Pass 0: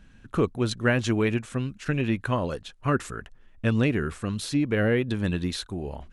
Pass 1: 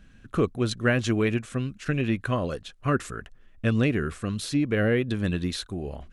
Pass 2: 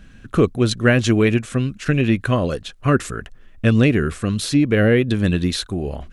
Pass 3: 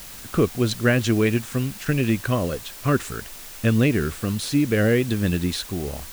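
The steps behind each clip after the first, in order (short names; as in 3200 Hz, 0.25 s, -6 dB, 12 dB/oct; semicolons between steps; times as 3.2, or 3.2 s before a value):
notch 900 Hz, Q 5.8
dynamic EQ 1100 Hz, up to -3 dB, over -40 dBFS, Q 0.96; gain +8.5 dB
requantised 6-bit, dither triangular; gain -4 dB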